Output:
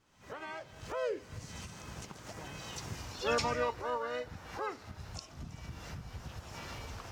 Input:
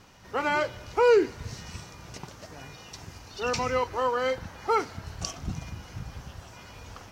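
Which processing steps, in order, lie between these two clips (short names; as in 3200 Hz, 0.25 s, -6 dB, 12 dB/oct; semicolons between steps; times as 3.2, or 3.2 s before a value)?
Doppler pass-by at 2.99, 19 m/s, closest 5 m; recorder AGC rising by 50 dB/s; harmoniser +4 st -6 dB; gain +1 dB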